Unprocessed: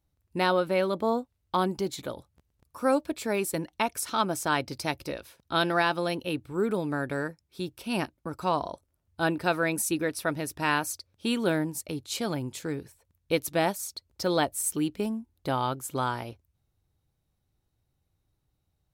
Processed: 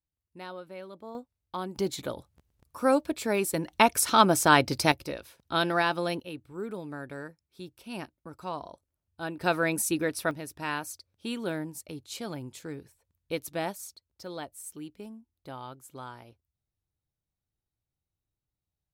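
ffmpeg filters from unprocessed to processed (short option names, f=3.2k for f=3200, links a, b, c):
-af "asetnsamples=n=441:p=0,asendcmd='1.15 volume volume -9dB;1.76 volume volume 1dB;3.66 volume volume 7dB;4.92 volume volume -1dB;6.2 volume volume -9dB;9.41 volume volume 0dB;10.31 volume volume -6.5dB;13.95 volume volume -13.5dB',volume=-17dB"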